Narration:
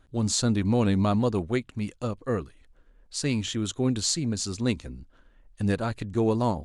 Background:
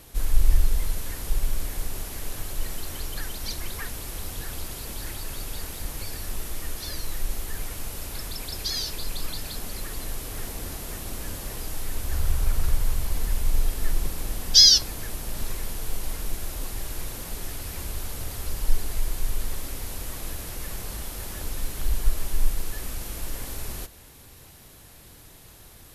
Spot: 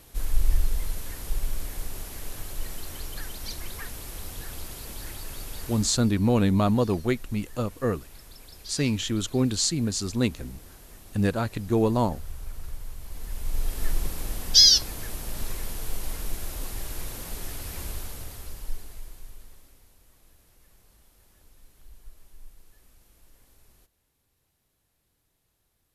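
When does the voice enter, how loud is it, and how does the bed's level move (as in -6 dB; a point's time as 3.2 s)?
5.55 s, +1.5 dB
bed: 5.73 s -3.5 dB
6.17 s -14 dB
12.98 s -14 dB
13.82 s -1.5 dB
17.89 s -1.5 dB
19.95 s -25 dB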